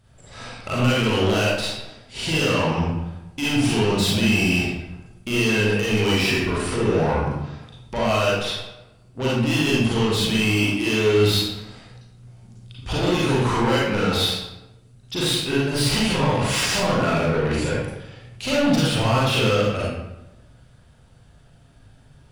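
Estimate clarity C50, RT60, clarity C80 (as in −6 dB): −2.0 dB, 1.0 s, 2.0 dB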